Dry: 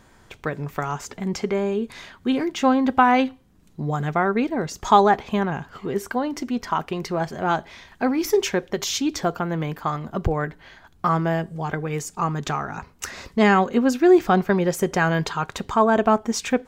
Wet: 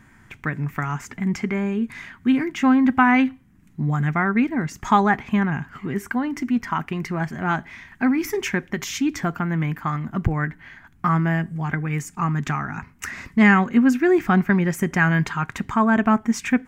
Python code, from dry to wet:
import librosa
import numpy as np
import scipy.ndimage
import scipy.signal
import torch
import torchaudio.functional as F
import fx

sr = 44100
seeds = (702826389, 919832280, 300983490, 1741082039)

y = fx.graphic_eq_10(x, sr, hz=(125, 250, 500, 2000, 4000), db=(6, 7, -11, 10, -9))
y = y * 10.0 ** (-1.5 / 20.0)